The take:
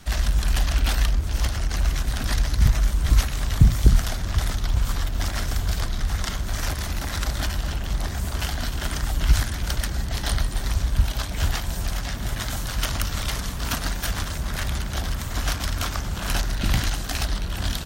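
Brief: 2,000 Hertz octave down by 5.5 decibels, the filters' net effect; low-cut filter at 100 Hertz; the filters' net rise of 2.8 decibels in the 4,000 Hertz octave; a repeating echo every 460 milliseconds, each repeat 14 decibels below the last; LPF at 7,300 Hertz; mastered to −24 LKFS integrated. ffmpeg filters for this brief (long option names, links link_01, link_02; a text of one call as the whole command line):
ffmpeg -i in.wav -af "highpass=100,lowpass=7300,equalizer=frequency=2000:width_type=o:gain=-9,equalizer=frequency=4000:width_type=o:gain=6.5,aecho=1:1:460|920:0.2|0.0399,volume=5dB" out.wav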